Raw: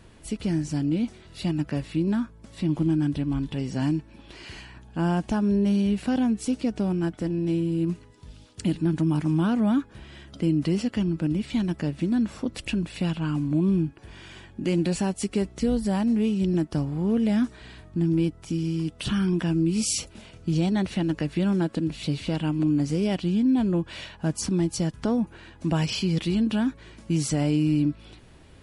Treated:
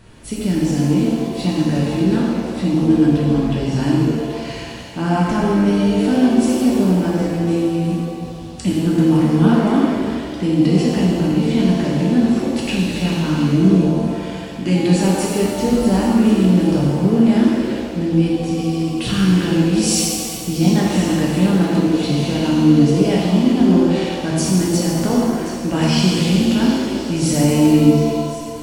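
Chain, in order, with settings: delay with a stepping band-pass 0.359 s, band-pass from 2700 Hz, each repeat 0.7 oct, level -8.5 dB; shimmer reverb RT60 1.8 s, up +7 st, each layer -8 dB, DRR -4.5 dB; gain +3.5 dB

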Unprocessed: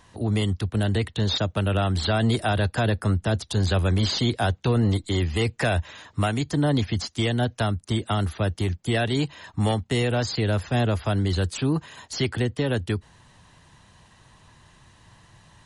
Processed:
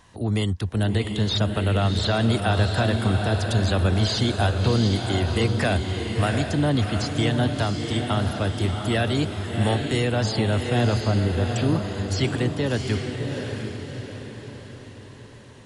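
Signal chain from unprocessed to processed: 11.07–11.56 LPF 1500 Hz; diffused feedback echo 0.712 s, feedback 48%, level -4.5 dB

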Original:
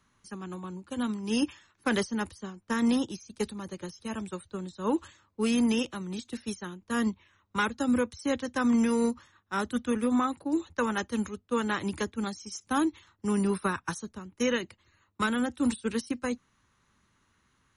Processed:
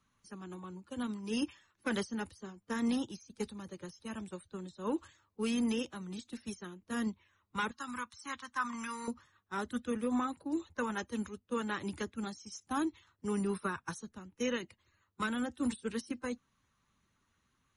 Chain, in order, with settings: bin magnitudes rounded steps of 15 dB; 7.71–9.08 resonant low shelf 770 Hz -11.5 dB, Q 3; gain -6.5 dB

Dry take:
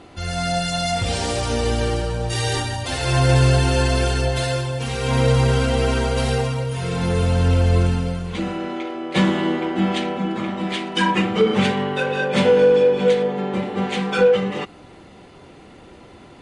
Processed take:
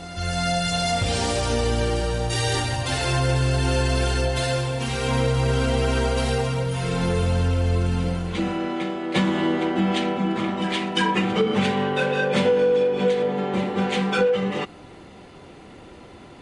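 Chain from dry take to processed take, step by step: compressor, threshold -17 dBFS, peak gain reduction 6.5 dB; on a send: reverse echo 0.348 s -13.5 dB

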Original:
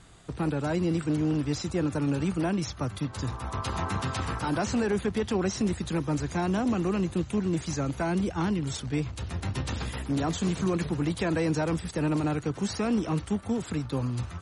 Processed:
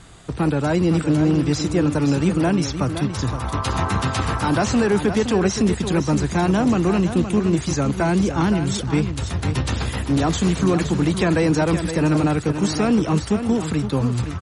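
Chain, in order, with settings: echo 0.518 s -9 dB; gain +8.5 dB

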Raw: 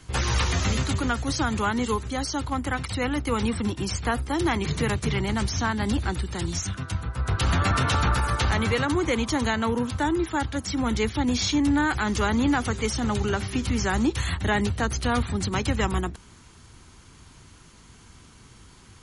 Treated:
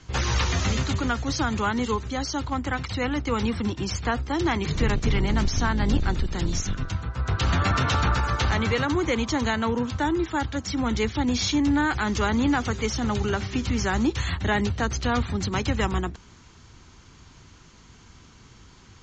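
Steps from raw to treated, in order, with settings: 4.73–6.92 octaver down 2 oct, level +3 dB; steep low-pass 7200 Hz 72 dB/oct

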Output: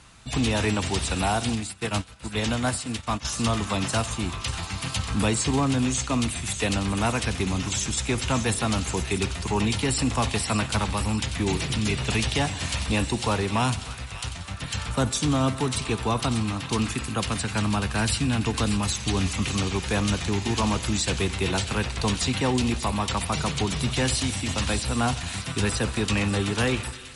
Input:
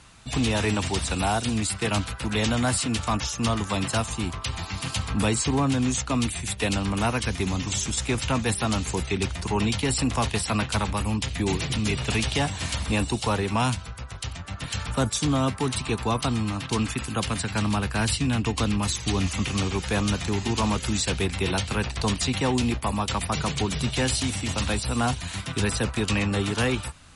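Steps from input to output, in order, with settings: thin delay 0.592 s, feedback 51%, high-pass 1700 Hz, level -9.5 dB; on a send at -15.5 dB: reverb RT60 1.4 s, pre-delay 47 ms; 1.55–3.25 on the sum: upward expander 2.5:1, over -33 dBFS

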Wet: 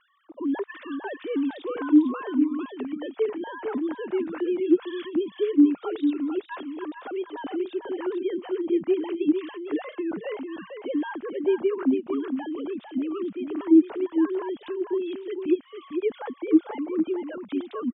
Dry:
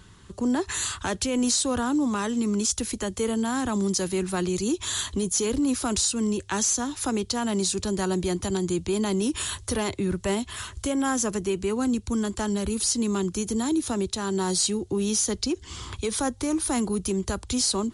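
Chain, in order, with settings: sine-wave speech; air absorption 260 m; on a send: echo 0.45 s -7 dB

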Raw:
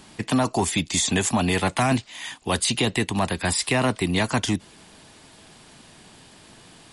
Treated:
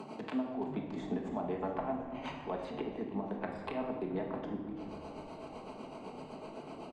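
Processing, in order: Wiener smoothing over 25 samples; treble ducked by the level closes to 760 Hz, closed at -23.5 dBFS; HPF 330 Hz 12 dB/oct; compressor, threshold -41 dBFS, peak gain reduction 17 dB; tremolo 7.9 Hz, depth 79%; frequency-shifting echo 0.335 s, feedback 52%, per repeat -110 Hz, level -17 dB; shoebox room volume 850 m³, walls mixed, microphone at 1.5 m; three-band squash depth 40%; gain +7 dB

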